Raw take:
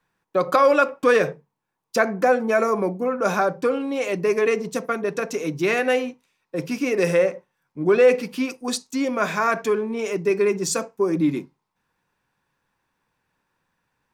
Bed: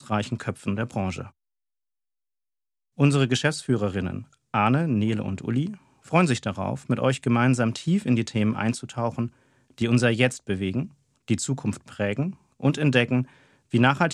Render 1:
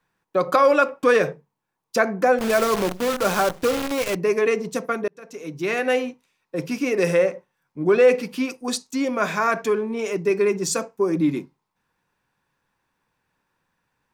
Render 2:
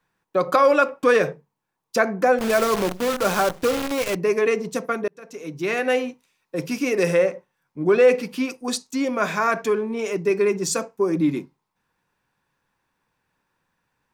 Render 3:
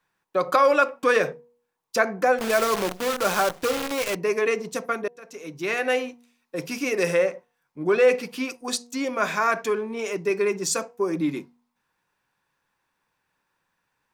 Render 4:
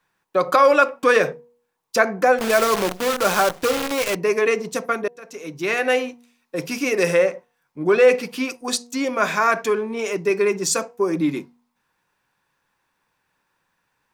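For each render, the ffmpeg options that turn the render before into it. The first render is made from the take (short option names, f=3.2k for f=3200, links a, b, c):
-filter_complex "[0:a]asplit=3[a][b][c];[a]afade=t=out:st=2.38:d=0.02[d];[b]acrusher=bits=5:dc=4:mix=0:aa=0.000001,afade=t=in:st=2.38:d=0.02,afade=t=out:st=4.14:d=0.02[e];[c]afade=t=in:st=4.14:d=0.02[f];[d][e][f]amix=inputs=3:normalize=0,asplit=2[g][h];[g]atrim=end=5.08,asetpts=PTS-STARTPTS,afade=t=out:st=5.076:d=0.004:c=hsin[i];[h]atrim=start=5.08,asetpts=PTS-STARTPTS,afade=t=in:d=0.88[j];[i][j]concat=n=2:v=0:a=1"
-filter_complex "[0:a]asettb=1/sr,asplit=3[a][b][c];[a]atrim=end=6.094[d];[b]atrim=start=6.09:end=7.03,asetpts=PTS-STARTPTS,afade=t=in:d=0.004:c=qsin,afade=t=out:st=0.936:d=0.004:c=qsin,highshelf=f=4.3k:g=4.5[e];[c]atrim=start=7.026[f];[d][e]acrossfade=d=0.004:c1=hsin:c2=qsin[g];[g][f]acrossfade=d=0.004:c1=qsin:c2=hsin"
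-af "lowshelf=f=410:g=-7,bandreject=f=240.2:t=h:w=4,bandreject=f=480.4:t=h:w=4,bandreject=f=720.6:t=h:w=4,bandreject=f=960.8:t=h:w=4"
-af "volume=4dB,alimiter=limit=-2dB:level=0:latency=1"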